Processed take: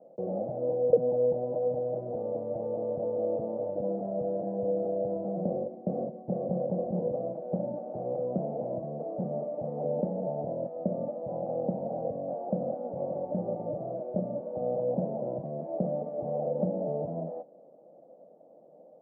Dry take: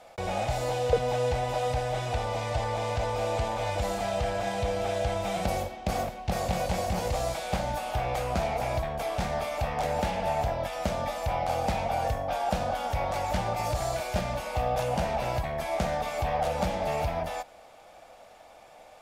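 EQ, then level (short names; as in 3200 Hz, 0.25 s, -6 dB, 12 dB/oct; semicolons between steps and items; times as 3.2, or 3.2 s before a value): Chebyshev band-pass 160–560 Hz, order 3; +3.5 dB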